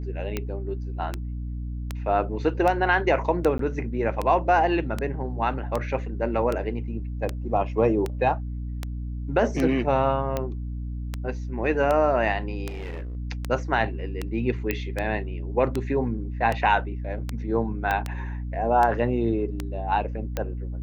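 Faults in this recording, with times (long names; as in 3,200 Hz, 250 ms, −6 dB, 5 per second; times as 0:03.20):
mains hum 60 Hz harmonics 5 −31 dBFS
scratch tick 78 rpm −13 dBFS
0:03.58–0:03.59: drop-out 13 ms
0:12.67–0:13.17: clipping −30.5 dBFS
0:14.71: click −11 dBFS
0:17.91: click −12 dBFS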